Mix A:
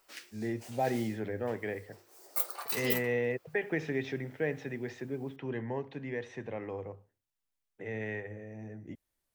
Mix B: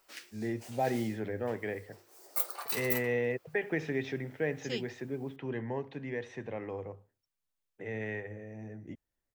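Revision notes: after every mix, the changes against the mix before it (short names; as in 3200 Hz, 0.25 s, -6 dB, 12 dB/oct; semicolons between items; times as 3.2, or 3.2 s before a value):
second voice: entry +1.85 s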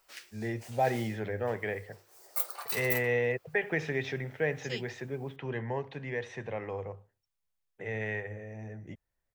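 first voice +4.5 dB; master: add bell 280 Hz -9 dB 0.9 oct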